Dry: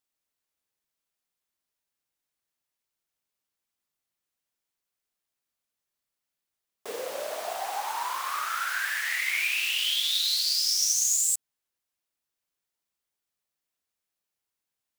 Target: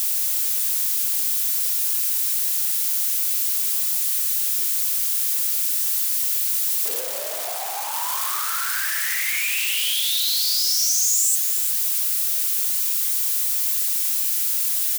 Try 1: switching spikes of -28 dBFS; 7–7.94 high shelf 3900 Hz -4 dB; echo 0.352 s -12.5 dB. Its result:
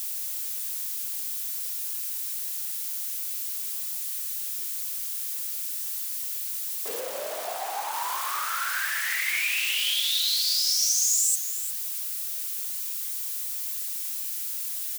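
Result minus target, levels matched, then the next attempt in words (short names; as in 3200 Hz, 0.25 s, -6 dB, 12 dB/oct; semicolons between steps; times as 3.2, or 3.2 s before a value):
switching spikes: distortion -9 dB
switching spikes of -18 dBFS; 7–7.94 high shelf 3900 Hz -4 dB; echo 0.352 s -12.5 dB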